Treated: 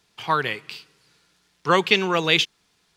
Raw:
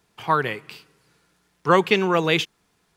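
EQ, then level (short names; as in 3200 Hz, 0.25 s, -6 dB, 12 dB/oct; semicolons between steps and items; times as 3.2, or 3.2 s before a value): bell 4200 Hz +9.5 dB 2 oct; -3.0 dB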